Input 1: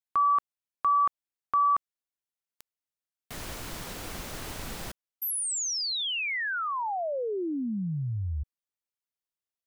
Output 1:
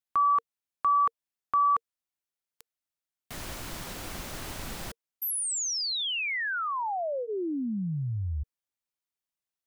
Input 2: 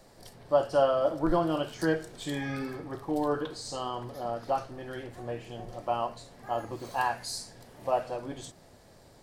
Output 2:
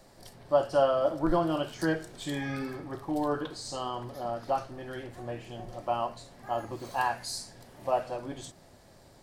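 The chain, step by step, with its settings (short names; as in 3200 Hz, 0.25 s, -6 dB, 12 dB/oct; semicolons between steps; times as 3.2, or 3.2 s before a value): notch 460 Hz, Q 12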